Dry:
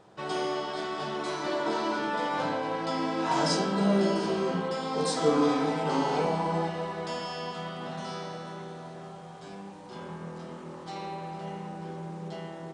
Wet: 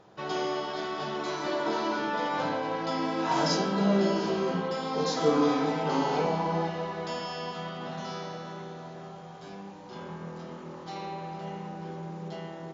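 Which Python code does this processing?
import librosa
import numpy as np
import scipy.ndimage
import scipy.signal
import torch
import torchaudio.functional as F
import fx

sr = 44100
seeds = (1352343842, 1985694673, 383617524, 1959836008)

y = fx.brickwall_lowpass(x, sr, high_hz=7300.0)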